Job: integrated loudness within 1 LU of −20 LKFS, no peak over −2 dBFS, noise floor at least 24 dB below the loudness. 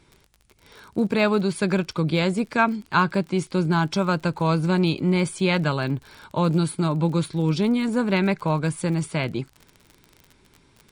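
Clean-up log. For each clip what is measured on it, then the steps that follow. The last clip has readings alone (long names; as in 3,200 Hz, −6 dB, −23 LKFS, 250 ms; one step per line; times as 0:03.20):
crackle rate 39 per second; integrated loudness −23.0 LKFS; sample peak −7.0 dBFS; target loudness −20.0 LKFS
→ click removal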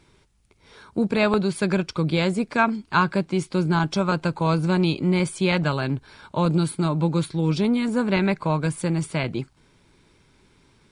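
crackle rate 0.37 per second; integrated loudness −23.0 LKFS; sample peak −7.0 dBFS; target loudness −20.0 LKFS
→ level +3 dB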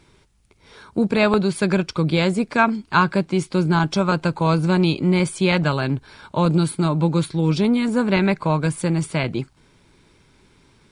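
integrated loudness −20.0 LKFS; sample peak −4.0 dBFS; background noise floor −57 dBFS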